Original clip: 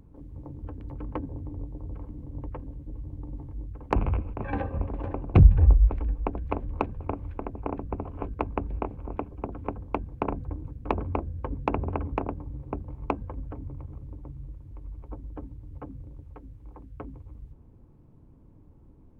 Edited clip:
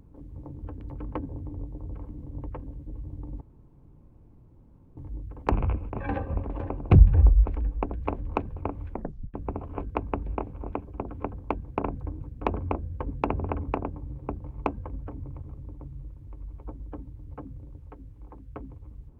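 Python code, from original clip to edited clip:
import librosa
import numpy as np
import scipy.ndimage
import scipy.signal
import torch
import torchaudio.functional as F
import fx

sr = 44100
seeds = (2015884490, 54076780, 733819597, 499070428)

y = fx.edit(x, sr, fx.insert_room_tone(at_s=3.41, length_s=1.56),
    fx.tape_stop(start_s=7.35, length_s=0.43), tone=tone)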